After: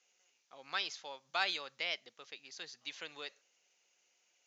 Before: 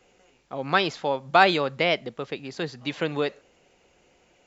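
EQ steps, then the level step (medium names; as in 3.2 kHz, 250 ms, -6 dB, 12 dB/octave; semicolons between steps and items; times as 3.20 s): band-pass filter 6.4 kHz, Q 4.4; distance through air 190 m; +11.5 dB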